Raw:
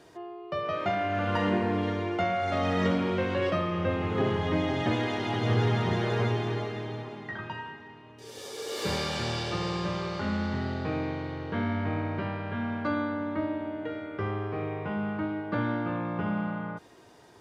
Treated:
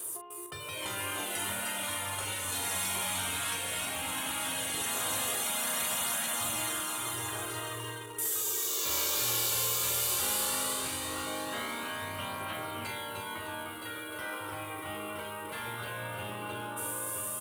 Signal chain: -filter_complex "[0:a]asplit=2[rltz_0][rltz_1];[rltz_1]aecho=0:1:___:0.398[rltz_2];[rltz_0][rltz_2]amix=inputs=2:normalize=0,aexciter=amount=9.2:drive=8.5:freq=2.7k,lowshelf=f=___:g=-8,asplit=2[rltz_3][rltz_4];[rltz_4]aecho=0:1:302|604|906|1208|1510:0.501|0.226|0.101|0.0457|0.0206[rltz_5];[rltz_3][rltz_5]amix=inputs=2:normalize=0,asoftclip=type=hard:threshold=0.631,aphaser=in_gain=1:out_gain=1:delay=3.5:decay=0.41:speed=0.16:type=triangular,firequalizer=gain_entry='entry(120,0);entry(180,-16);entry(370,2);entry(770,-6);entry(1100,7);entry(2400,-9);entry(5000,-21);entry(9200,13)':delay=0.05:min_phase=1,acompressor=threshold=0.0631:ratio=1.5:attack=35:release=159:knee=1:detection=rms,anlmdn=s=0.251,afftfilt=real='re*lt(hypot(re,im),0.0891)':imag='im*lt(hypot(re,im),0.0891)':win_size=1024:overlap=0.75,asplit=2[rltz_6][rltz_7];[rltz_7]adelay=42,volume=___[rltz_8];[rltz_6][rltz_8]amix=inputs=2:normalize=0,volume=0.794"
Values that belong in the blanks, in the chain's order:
968, 130, 0.398